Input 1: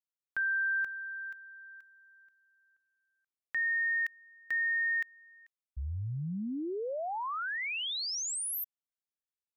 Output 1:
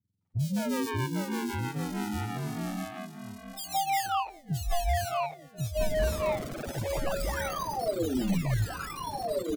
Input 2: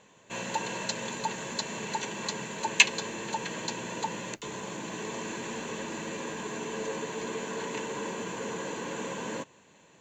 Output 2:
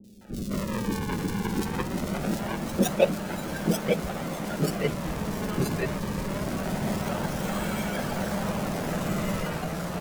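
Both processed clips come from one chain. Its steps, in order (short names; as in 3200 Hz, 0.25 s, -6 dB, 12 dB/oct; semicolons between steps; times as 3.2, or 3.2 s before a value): spectrum mirrored in octaves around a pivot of 1200 Hz; HPF 130 Hz; flange 1.3 Hz, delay 9.4 ms, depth 2.8 ms, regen -3%; in parallel at +1 dB: compressor, threshold -43 dBFS; on the sum: decimation with a swept rate 39×, swing 160% 0.23 Hz; echoes that change speed 0.545 s, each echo -2 st, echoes 3; three bands offset in time lows, highs, mids 40/210 ms, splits 390/3500 Hz; vocal rider within 3 dB 2 s; dynamic EQ 610 Hz, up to +6 dB, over -53 dBFS, Q 5.4; gain +3 dB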